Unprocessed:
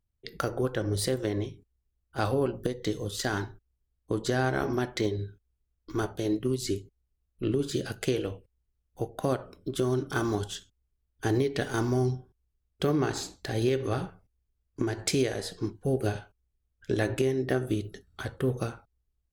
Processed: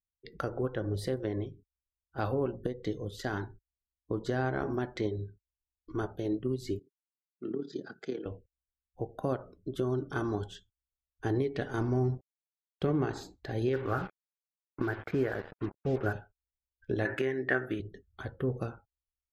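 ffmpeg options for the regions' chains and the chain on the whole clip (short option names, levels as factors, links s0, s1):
-filter_complex "[0:a]asettb=1/sr,asplit=3[s0][s1][s2];[s0]atrim=end=6.794[s3];[s1]atrim=start=6.79:end=8.26,asetpts=PTS-STARTPTS,afade=t=in:d=0.004:c=qsin,afade=t=out:st=1.466:d=0.004:c=qsin,tremolo=f=36:d=0.667,highpass=f=180:w=0.5412,highpass=f=180:w=1.3066,equalizer=f=560:t=q:w=4:g=-8,equalizer=f=1300:t=q:w=4:g=4,equalizer=f=2800:t=q:w=4:g=-9,equalizer=f=5100:t=q:w=4:g=3,lowpass=f=6700:w=0.5412,lowpass=f=6700:w=1.3066[s4];[s2]atrim=start=8.256[s5];[s3][s4]acrossfade=d=0.004:c1=hsin:c2=qsin[s6];[s6][s5]acrossfade=d=0.004:c1=qsin:c2=hsin,asettb=1/sr,asplit=3[s7][s8][s9];[s7]atrim=end=11.784[s10];[s8]atrim=start=11.78:end=13.05,asetpts=PTS-STARTPTS,afade=t=in:d=0.004:c=qsin,afade=t=out:st=1.266:d=0.004:c=qsin,lowshelf=f=260:g=4,aeval=exprs='sgn(val(0))*max(abs(val(0))-0.00891,0)':c=same[s11];[s9]atrim=start=13.046[s12];[s10][s11]acrossfade=d=0.004:c1=hsin:c2=qsin[s13];[s13][s12]acrossfade=d=0.004:c1=qsin:c2=hsin,asettb=1/sr,asplit=3[s14][s15][s16];[s14]atrim=end=13.734[s17];[s15]atrim=start=13.73:end=16.13,asetpts=PTS-STARTPTS,afade=t=in:d=0.004:c=qsin,afade=t=out:st=2.396:d=0.004:c=qsin,lowpass=f=1500:t=q:w=3.6,acrusher=bits=5:mix=0:aa=0.5[s18];[s16]atrim=start=16.126[s19];[s17][s18]acrossfade=d=0.004:c1=hsin:c2=qsin[s20];[s20][s19]acrossfade=d=0.004:c1=qsin:c2=hsin,asettb=1/sr,asplit=3[s21][s22][s23];[s21]atrim=end=17.054[s24];[s22]atrim=start=17.05:end=17.8,asetpts=PTS-STARTPTS,afade=t=in:d=0.004:c=qsin,afade=t=out:st=0.746:d=0.004:c=qsin,highpass=f=230:p=1,equalizer=f=1700:t=o:w=0.95:g=15[s25];[s23]atrim=start=17.796[s26];[s24][s25]acrossfade=d=0.004:c1=hsin:c2=qsin[s27];[s27][s26]acrossfade=d=0.004:c1=qsin:c2=hsin,equalizer=f=12000:w=5.3:g=13.5,afftdn=nr=17:nf=-49,aemphasis=mode=reproduction:type=75fm,volume=0.596"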